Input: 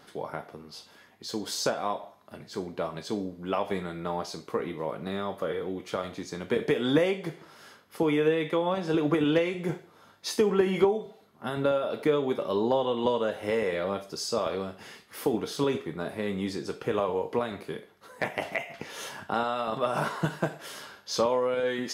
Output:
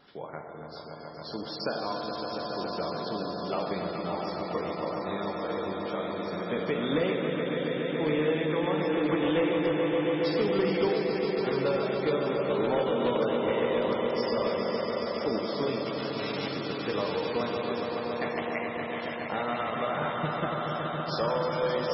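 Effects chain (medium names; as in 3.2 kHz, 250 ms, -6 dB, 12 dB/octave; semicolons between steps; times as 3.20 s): 15.85–16.49 s: formants flattened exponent 0.1; on a send: echo with a slow build-up 140 ms, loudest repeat 5, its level -7.5 dB; on the sum: Schroeder reverb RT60 2.2 s, combs from 26 ms, DRR 4.5 dB; in parallel at -11 dB: integer overflow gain 13.5 dB; 4.71–5.34 s: on the sum: peaking EQ 71 Hz -10 dB 0.27 oct; trim -6.5 dB; MP3 16 kbps 24 kHz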